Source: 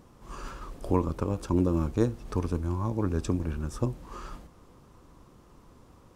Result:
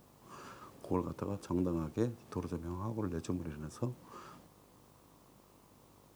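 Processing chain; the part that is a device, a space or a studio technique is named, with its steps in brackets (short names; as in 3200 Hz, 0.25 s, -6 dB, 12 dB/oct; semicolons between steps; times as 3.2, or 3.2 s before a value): HPF 100 Hz 24 dB/oct; video cassette with head-switching buzz (buzz 50 Hz, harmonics 23, -59 dBFS -2 dB/oct; white noise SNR 30 dB); gain -8 dB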